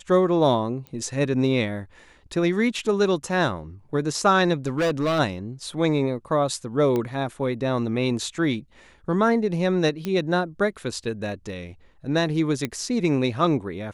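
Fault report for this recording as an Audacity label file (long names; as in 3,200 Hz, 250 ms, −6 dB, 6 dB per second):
0.870000	0.870000	click −24 dBFS
4.660000	5.200000	clipping −19 dBFS
6.960000	6.960000	click −14 dBFS
10.050000	10.050000	click −15 dBFS
11.040000	11.040000	drop-out 3 ms
12.650000	12.650000	click −12 dBFS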